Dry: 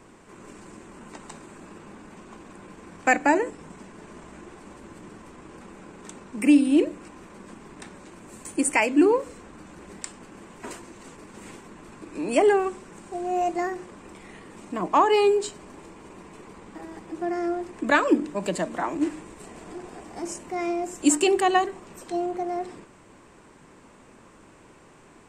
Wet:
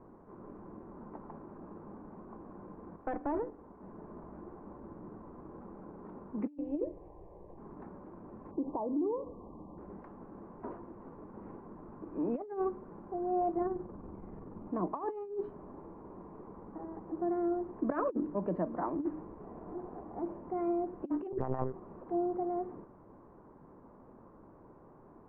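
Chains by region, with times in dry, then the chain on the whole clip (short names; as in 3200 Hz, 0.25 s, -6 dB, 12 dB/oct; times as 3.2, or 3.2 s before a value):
2.96–3.83 bell 150 Hz -11.5 dB 0.63 oct + tube stage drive 24 dB, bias 0.7
6.58–7.58 low shelf 79 Hz +8 dB + fixed phaser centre 570 Hz, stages 4
8.51–9.78 brick-wall FIR low-pass 1200 Hz + compressor 5:1, threshold -26 dBFS
13.57–14.68 low shelf 200 Hz +11 dB + AM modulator 21 Hz, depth 30% + notch 1900 Hz, Q 13
21.32–21.74 LPF 2900 Hz + monotone LPC vocoder at 8 kHz 130 Hz
whole clip: LPF 1100 Hz 24 dB/oct; dynamic EQ 750 Hz, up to -4 dB, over -36 dBFS, Q 1.4; negative-ratio compressor -26 dBFS, ratio -0.5; gain -6 dB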